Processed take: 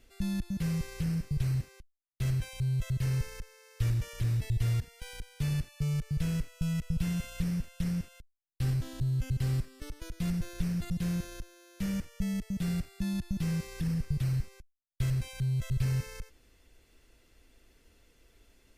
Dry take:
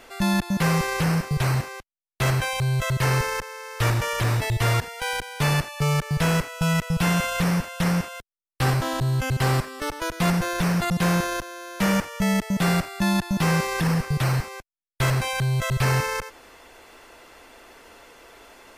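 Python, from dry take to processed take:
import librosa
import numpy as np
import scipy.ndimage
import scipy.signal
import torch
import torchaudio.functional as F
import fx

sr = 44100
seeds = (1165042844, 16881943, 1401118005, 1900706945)

y = fx.tone_stack(x, sr, knobs='10-0-1')
y = y * 10.0 ** (6.0 / 20.0)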